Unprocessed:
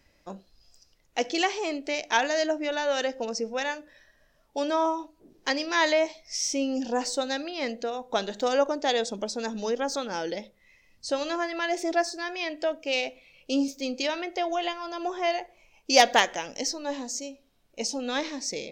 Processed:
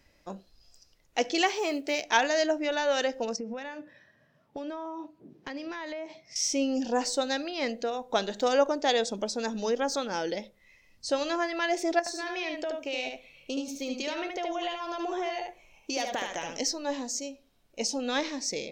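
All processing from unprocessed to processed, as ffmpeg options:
-filter_complex "[0:a]asettb=1/sr,asplit=3[s0][s1][s2];[s0]atrim=end=1.474[s3];[s1]atrim=start=1.47:end=2.04,asetpts=PTS-STARTPTS,afade=t=in:d=0.004:c=qsin,afade=t=out:st=0.566:d=0.004:c=qsin,highpass=57,acrusher=bits=8:mode=log:mix=0:aa=0.000001,asplit=2[s4][s5];[s5]adelay=14,volume=0.2[s6];[s4][s6]amix=inputs=2:normalize=0,atrim=end_sample=25137[s7];[s2]atrim=start=2.036[s8];[s3][s7]acrossfade=d=0.004:c1=hsin:c2=qsin[s9];[s9][s8]acrossfade=d=0.004:c1=qsin:c2=hsin,asettb=1/sr,asplit=3[s10][s11][s12];[s10]atrim=end=3.364[s13];[s11]atrim=start=3.36:end=6.36,asetpts=PTS-STARTPTS,afade=t=in:d=0.004:c=qsin,afade=t=out:st=2.996:d=0.004:c=qsin,highpass=f=120:w=0.5412,highpass=f=120:w=1.3066,acompressor=threshold=0.0178:ratio=6:attack=3.2:release=140:knee=1:detection=peak,bass=f=250:g=11,treble=f=4000:g=-11[s14];[s12]atrim=start=6.356[s15];[s13][s14]acrossfade=d=0.004:c1=hsin:c2=qsin[s16];[s16][s15]acrossfade=d=0.004:c1=qsin:c2=hsin,asettb=1/sr,asplit=3[s17][s18][s19];[s17]atrim=end=11.994[s20];[s18]atrim=start=11.99:end=16.6,asetpts=PTS-STARTPTS,afade=t=in:d=0.004:c=qsin,afade=t=out:st=4.606:d=0.004:c=qsin,bandreject=f=4900:w=7.1,acompressor=threshold=0.0355:ratio=6:attack=3.2:release=140:knee=1:detection=peak,aecho=1:1:74:0.631,atrim=end_sample=203301[s21];[s19]atrim=start=16.596[s22];[s20][s21]acrossfade=d=0.004:c1=hsin:c2=qsin[s23];[s23][s22]acrossfade=d=0.004:c1=qsin:c2=hsin"

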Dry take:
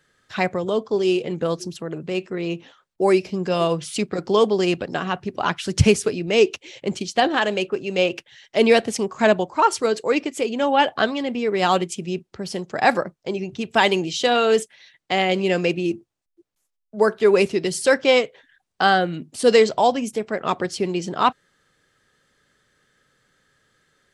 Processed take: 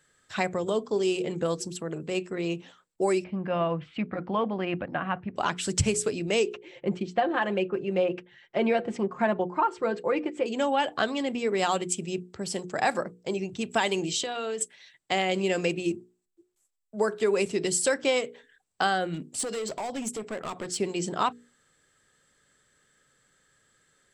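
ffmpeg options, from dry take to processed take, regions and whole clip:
-filter_complex "[0:a]asettb=1/sr,asplit=3[s0][s1][s2];[s0]atrim=end=3.244[s3];[s1]atrim=start=3.24:end=5.36,asetpts=PTS-STARTPTS,afade=t=in:d=0.004:c=qsin,afade=t=out:st=2.116:d=0.004:c=qsin,lowpass=f=2400:w=0.5412,lowpass=f=2400:w=1.3066,equalizer=f=410:t=o:w=0.29:g=-15[s4];[s2]atrim=start=5.356[s5];[s3][s4]acrossfade=d=0.004:c1=hsin:c2=qsin[s6];[s6][s5]acrossfade=d=0.004:c1=qsin:c2=hsin,asettb=1/sr,asplit=3[s7][s8][s9];[s7]atrim=end=6.534[s10];[s8]atrim=start=6.53:end=10.46,asetpts=PTS-STARTPTS,afade=t=in:d=0.004:c=qsin,afade=t=out:st=3.926:d=0.004:c=qsin,lowpass=1900,aecho=1:1:5.7:0.57,atrim=end_sample=173313[s11];[s9]atrim=start=10.456[s12];[s10][s11]acrossfade=d=0.004:c1=hsin:c2=qsin[s13];[s13][s12]acrossfade=d=0.004:c1=qsin:c2=hsin,asettb=1/sr,asplit=3[s14][s15][s16];[s14]atrim=end=14.214[s17];[s15]atrim=start=14.21:end=14.61,asetpts=PTS-STARTPTS,afade=t=in:d=0.004:c=qsin,afade=t=out:st=0.396:d=0.004:c=qsin,lowpass=5600,acompressor=threshold=0.0501:ratio=6:attack=3.2:release=140:knee=1:detection=peak[s18];[s16]atrim=start=14.606[s19];[s17][s18]acrossfade=d=0.004:c1=hsin:c2=qsin[s20];[s20][s19]acrossfade=d=0.004:c1=qsin:c2=hsin,asettb=1/sr,asplit=3[s21][s22][s23];[s21]atrim=end=19.144[s24];[s22]atrim=start=19.14:end=20.78,asetpts=PTS-STARTPTS,afade=t=in:d=0.004:c=qsin,afade=t=out:st=1.636:d=0.004:c=qsin,acompressor=threshold=0.0794:ratio=16:attack=3.2:release=140:knee=1:detection=peak,asoftclip=type=hard:threshold=0.0531[s25];[s23]atrim=start=20.776[s26];[s24][s25]acrossfade=d=0.004:c1=hsin:c2=qsin[s27];[s27][s26]acrossfade=d=0.004:c1=qsin:c2=hsin,equalizer=f=7800:w=5.1:g=14,bandreject=f=60:t=h:w=6,bandreject=f=120:t=h:w=6,bandreject=f=180:t=h:w=6,bandreject=f=240:t=h:w=6,bandreject=f=300:t=h:w=6,bandreject=f=360:t=h:w=6,bandreject=f=420:t=h:w=6,bandreject=f=480:t=h:w=6,acompressor=threshold=0.126:ratio=4,volume=0.668"

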